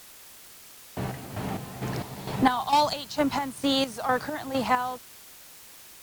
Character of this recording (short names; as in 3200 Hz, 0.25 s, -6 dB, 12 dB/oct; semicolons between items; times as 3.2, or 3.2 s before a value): chopped level 2.2 Hz, depth 65%, duty 45%; a quantiser's noise floor 8-bit, dither triangular; Opus